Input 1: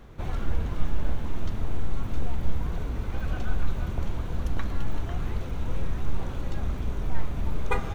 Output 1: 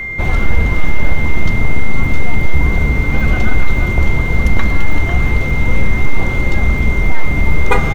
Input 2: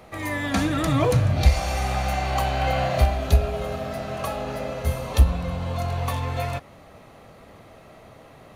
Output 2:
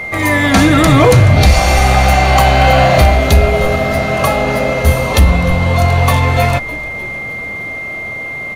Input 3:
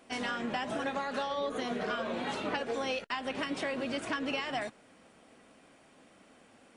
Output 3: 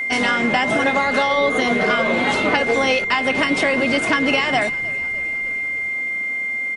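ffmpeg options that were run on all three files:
-filter_complex "[0:a]asplit=7[a][b][c][d][e][f][g];[b]adelay=304,afreqshift=-72,volume=-20dB[h];[c]adelay=608,afreqshift=-144,volume=-23.7dB[i];[d]adelay=912,afreqshift=-216,volume=-27.5dB[j];[e]adelay=1216,afreqshift=-288,volume=-31.2dB[k];[f]adelay=1520,afreqshift=-360,volume=-35dB[l];[g]adelay=1824,afreqshift=-432,volume=-38.7dB[m];[a][h][i][j][k][l][m]amix=inputs=7:normalize=0,aeval=exprs='val(0)+0.0158*sin(2*PI*2100*n/s)':c=same,apsyclip=17dB,volume=-2dB"

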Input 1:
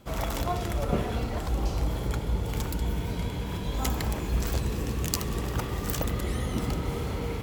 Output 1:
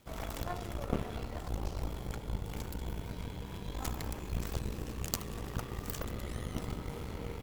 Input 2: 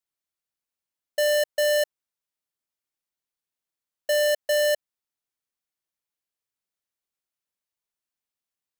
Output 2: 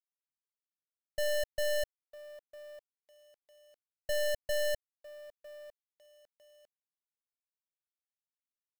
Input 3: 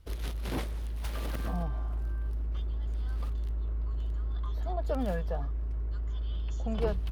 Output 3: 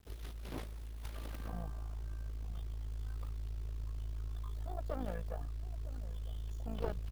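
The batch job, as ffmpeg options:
-filter_complex "[0:a]asplit=2[a][b];[b]adelay=953,lowpass=f=870:p=1,volume=-14dB,asplit=2[c][d];[d]adelay=953,lowpass=f=870:p=1,volume=0.21[e];[a][c][e]amix=inputs=3:normalize=0,acrusher=bits=8:mix=0:aa=0.000001,aeval=exprs='0.531*(cos(1*acos(clip(val(0)/0.531,-1,1)))-cos(1*PI/2))+0.106*(cos(3*acos(clip(val(0)/0.531,-1,1)))-cos(3*PI/2))+0.119*(cos(4*acos(clip(val(0)/0.531,-1,1)))-cos(4*PI/2))':c=same,volume=-3dB"

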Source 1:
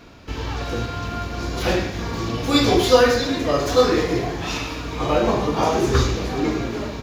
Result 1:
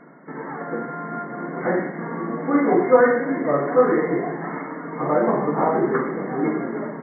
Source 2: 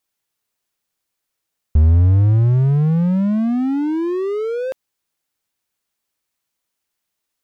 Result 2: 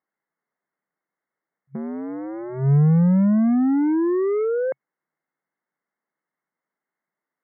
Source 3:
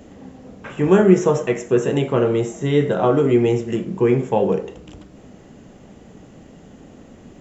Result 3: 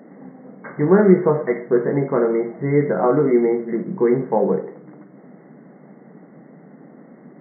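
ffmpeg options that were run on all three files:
-af "afftfilt=real='re*between(b*sr/4096,130,2200)':imag='im*between(b*sr/4096,130,2200)':win_size=4096:overlap=0.75"

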